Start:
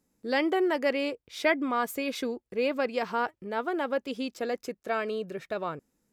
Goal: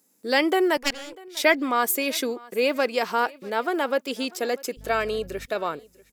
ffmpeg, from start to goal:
-filter_complex "[0:a]highpass=240,asettb=1/sr,asplit=3[s0][s1][s2];[s0]atrim=end=0.774[s3];[s1]atrim=start=0.77:end=1.37,asetpts=PTS-STARTPTS,afade=t=in:d=0.004:c=qsin,afade=t=out:st=0.596:d=0.004:c=qsin,aeval=exprs='0.188*(cos(1*acos(clip(val(0)/0.188,-1,1)))-cos(1*PI/2))+0.075*(cos(3*acos(clip(val(0)/0.188,-1,1)))-cos(3*PI/2))+0.00531*(cos(6*acos(clip(val(0)/0.188,-1,1)))-cos(6*PI/2))+0.0015*(cos(7*acos(clip(val(0)/0.188,-1,1)))-cos(7*PI/2))':c=same[s4];[s2]atrim=start=1.366[s5];[s3][s4]acrossfade=d=0.004:c1=hsin:c2=qsin[s6];[s6][s5]acrossfade=d=0.004:c1=qsin:c2=hsin,crystalizer=i=2:c=0,asettb=1/sr,asplit=3[s7][s8][s9];[s7]atrim=end=4.774[s10];[s8]atrim=start=4.77:end=5.46,asetpts=PTS-STARTPTS,afade=t=in:d=0.004:c=qsin,afade=t=out:st=0.686:d=0.004:c=qsin,aeval=exprs='val(0)+0.00447*(sin(2*PI*50*n/s)+sin(2*PI*2*50*n/s)/2+sin(2*PI*3*50*n/s)/3+sin(2*PI*4*50*n/s)/4+sin(2*PI*5*50*n/s)/5)':c=same[s11];[s9]atrim=start=5.456[s12];[s10][s11]acrossfade=d=0.004:c1=hsin:c2=qsin[s13];[s13][s12]acrossfade=d=0.004:c1=qsin:c2=hsin,asplit=2[s14][s15];[s15]aecho=0:1:645|1290:0.0708|0.0262[s16];[s14][s16]amix=inputs=2:normalize=0,volume=1.78"

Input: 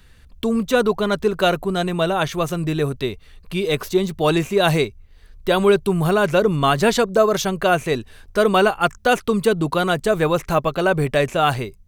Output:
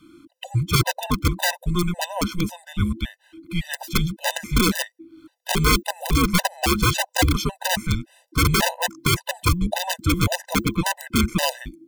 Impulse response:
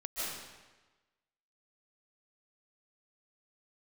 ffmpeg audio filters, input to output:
-af "aeval=exprs='(mod(2.99*val(0)+1,2)-1)/2.99':c=same,afreqshift=-350,afftfilt=real='re*gt(sin(2*PI*1.8*pts/sr)*(1-2*mod(floor(b*sr/1024/510),2)),0)':imag='im*gt(sin(2*PI*1.8*pts/sr)*(1-2*mod(floor(b*sr/1024/510),2)),0)':win_size=1024:overlap=0.75"

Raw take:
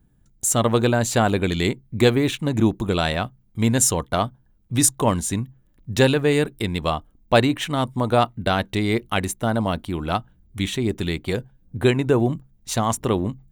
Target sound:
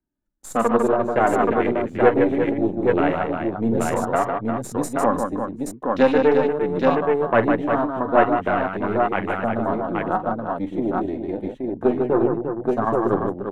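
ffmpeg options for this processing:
-filter_complex "[0:a]flanger=delay=3.2:depth=8.1:regen=19:speed=0.18:shape=sinusoidal,aeval=exprs='0.501*(cos(1*acos(clip(val(0)/0.501,-1,1)))-cos(1*PI/2))+0.0631*(cos(6*acos(clip(val(0)/0.501,-1,1)))-cos(6*PI/2))':c=same,afwtdn=0.0355,acrossover=split=220 2200:gain=0.224 1 0.126[s0][s1][s2];[s0][s1][s2]amix=inputs=3:normalize=0,aecho=1:1:44|45|152|349|827:0.251|0.112|0.562|0.422|0.708,volume=1.58"

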